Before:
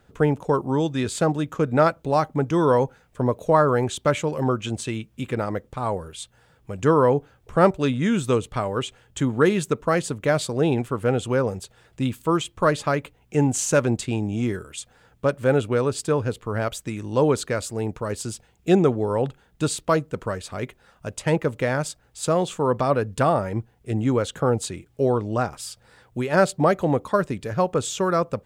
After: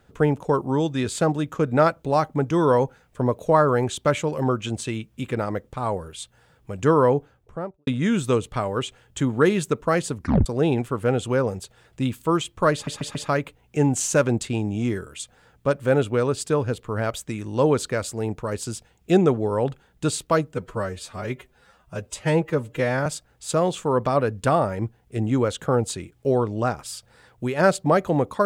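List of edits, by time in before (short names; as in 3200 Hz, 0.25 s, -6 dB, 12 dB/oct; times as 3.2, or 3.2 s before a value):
7.05–7.87 studio fade out
10.16 tape stop 0.30 s
12.73 stutter 0.14 s, 4 plays
20.12–21.8 stretch 1.5×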